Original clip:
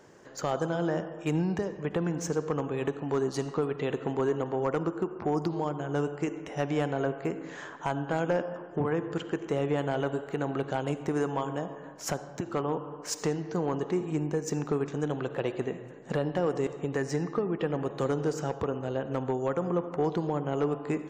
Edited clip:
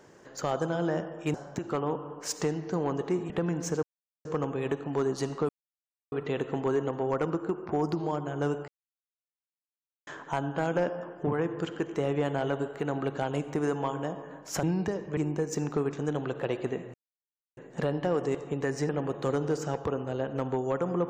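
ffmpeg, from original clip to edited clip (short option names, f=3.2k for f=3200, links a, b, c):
-filter_complex "[0:a]asplit=11[a][b][c][d][e][f][g][h][i][j][k];[a]atrim=end=1.342[l];[b]atrim=start=12.158:end=14.122[m];[c]atrim=start=1.878:end=2.41,asetpts=PTS-STARTPTS,afade=t=out:st=0.528:d=0.004:c=hsin,apad=pad_dur=0.42[n];[d]atrim=start=2.41:end=3.65,asetpts=PTS-STARTPTS,afade=t=in:d=0.004:c=hsin,afade=t=out:st=1.236:d=0.004:c=hsin,apad=pad_dur=0.63[o];[e]atrim=start=3.65:end=6.21,asetpts=PTS-STARTPTS,afade=t=in:d=0.004:c=hsin,afade=t=out:st=2.556:d=0.004:c=hsin[p];[f]atrim=start=6.21:end=7.6,asetpts=PTS-STARTPTS,volume=0[q];[g]atrim=start=7.6:end=12.162,asetpts=PTS-STARTPTS,afade=t=in:d=0.004:c=hsin[r];[h]atrim=start=1.338:end=1.882[s];[i]atrim=start=14.118:end=15.89,asetpts=PTS-STARTPTS,afade=t=out:st=1.768:d=0.004:c=hsin,apad=pad_dur=0.63[t];[j]atrim=start=15.89:end=17.212,asetpts=PTS-STARTPTS,afade=t=in:d=0.004:c=hsin[u];[k]atrim=start=17.648[v];[l][m]acrossfade=d=0.004:c1=hsin:c2=hsin[w];[n][o][p][q][r]concat=n=5:v=0:a=1[x];[w][x]acrossfade=d=0.004:c1=hsin:c2=hsin[y];[y][s]acrossfade=d=0.004:c1=hsin:c2=hsin[z];[t][u]concat=n=2:v=0:a=1[aa];[z][aa]acrossfade=d=0.004:c1=hsin:c2=hsin[ab];[ab][v]acrossfade=d=0.004:c1=hsin:c2=hsin"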